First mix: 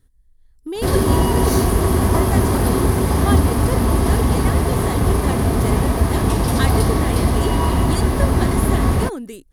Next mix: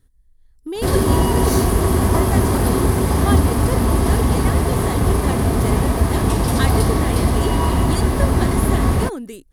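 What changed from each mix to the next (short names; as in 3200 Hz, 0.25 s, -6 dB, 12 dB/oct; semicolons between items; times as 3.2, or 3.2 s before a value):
background: add bell 7800 Hz +4 dB 0.23 oct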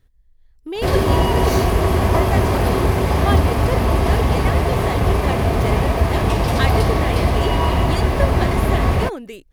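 master: add fifteen-band EQ 250 Hz -5 dB, 630 Hz +5 dB, 2500 Hz +7 dB, 10000 Hz -11 dB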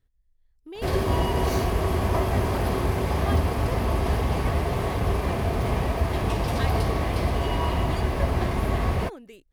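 speech -12.0 dB; background -7.5 dB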